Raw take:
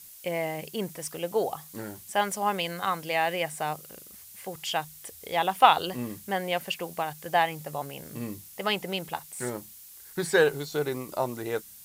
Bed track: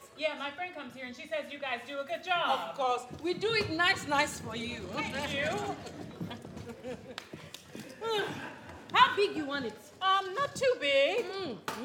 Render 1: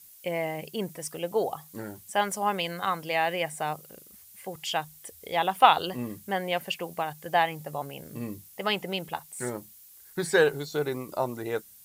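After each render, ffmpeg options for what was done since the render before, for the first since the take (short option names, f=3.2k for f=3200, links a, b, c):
-af "afftdn=nr=6:nf=-49"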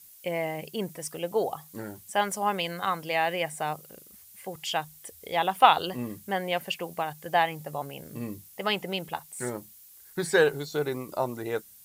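-af anull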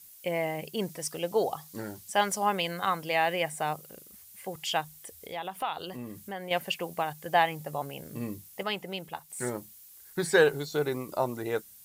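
-filter_complex "[0:a]asettb=1/sr,asplit=3[a][b][c];[a]atrim=end=0.774[d];[b]atrim=start=0.77:end=2.46,asetpts=PTS-STARTPTS,afade=t=in:d=0.004:c=qsin,afade=t=out:st=1.686:d=0.004:c=qsin,equalizer=f=4.9k:t=o:w=1:g=5[e];[c]atrim=start=2.456[f];[d][e]acrossfade=d=0.004:c1=hsin:c2=qsin[g];[g][f]acrossfade=d=0.004:c1=qsin:c2=hsin,asettb=1/sr,asplit=3[h][i][j];[h]atrim=end=4.814[k];[i]atrim=start=4.81:end=6.51,asetpts=PTS-STARTPTS,afade=t=in:d=0.004:c=qsin,afade=t=out:st=1.696:d=0.004:c=qsin,acompressor=threshold=-40dB:ratio=2:attack=3.2:release=140:knee=1:detection=peak[l];[j]atrim=start=6.506[m];[k][l]acrossfade=d=0.004:c1=hsin:c2=qsin[n];[n][m]acrossfade=d=0.004:c1=qsin:c2=hsin,asplit=3[o][p][q];[o]atrim=end=8.632[r];[p]atrim=start=8.628:end=9.302,asetpts=PTS-STARTPTS,volume=-5dB[s];[q]atrim=start=9.298[t];[r][s]acrossfade=d=0.004:c1=hsin:c2=hsin[u];[u][t]acrossfade=d=0.004:c1=hsin:c2=hsin"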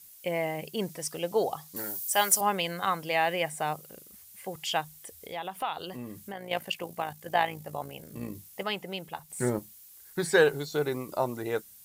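-filter_complex "[0:a]asettb=1/sr,asplit=3[a][b][c];[a]atrim=end=1.764[d];[b]atrim=start=1.76:end=2.41,asetpts=PTS-STARTPTS,afade=t=in:d=0.004:c=qsin,afade=t=out:st=0.646:d=0.004:c=qsin,aemphasis=mode=production:type=bsi[e];[c]atrim=start=2.406[f];[d][e]acrossfade=d=0.004:c1=hsin:c2=qsin[g];[g][f]acrossfade=d=0.004:c1=qsin:c2=hsin,asettb=1/sr,asplit=3[h][i][j];[h]atrim=end=6.324[k];[i]atrim=start=6.32:end=8.35,asetpts=PTS-STARTPTS,afade=t=in:d=0.004:c=qsin,afade=t=out:st=2.026:d=0.004:c=qsin,tremolo=f=56:d=0.571[l];[j]atrim=start=8.346[m];[k][l]acrossfade=d=0.004:c1=hsin:c2=qsin[n];[n][m]acrossfade=d=0.004:c1=qsin:c2=hsin,asettb=1/sr,asplit=3[o][p][q];[o]atrim=end=9.194[r];[p]atrim=start=9.19:end=9.59,asetpts=PTS-STARTPTS,afade=t=in:d=0.004:c=qsin,afade=t=out:st=0.396:d=0.004:c=qsin,lowshelf=f=480:g=8.5[s];[q]atrim=start=9.586[t];[r][s]acrossfade=d=0.004:c1=hsin:c2=qsin[u];[u][t]acrossfade=d=0.004:c1=qsin:c2=hsin"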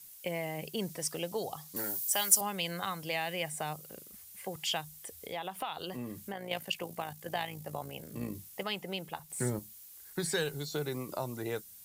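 -filter_complex "[0:a]acrossover=split=180|3000[a][b][c];[b]acompressor=threshold=-35dB:ratio=4[d];[a][d][c]amix=inputs=3:normalize=0"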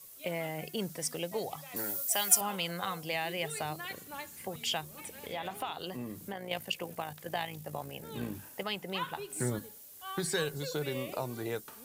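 -filter_complex "[1:a]volume=-15.5dB[a];[0:a][a]amix=inputs=2:normalize=0"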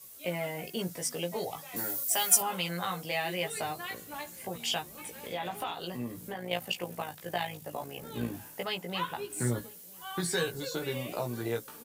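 -filter_complex "[0:a]asplit=2[a][b];[b]adelay=17,volume=-3dB[c];[a][c]amix=inputs=2:normalize=0,asplit=2[d][e];[e]adelay=991.3,volume=-23dB,highshelf=f=4k:g=-22.3[f];[d][f]amix=inputs=2:normalize=0"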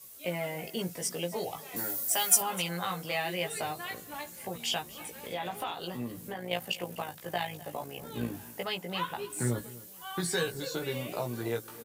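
-af "aecho=1:1:254:0.112"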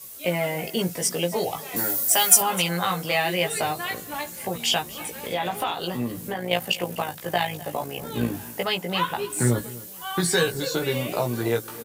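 -af "volume=9dB,alimiter=limit=-1dB:level=0:latency=1"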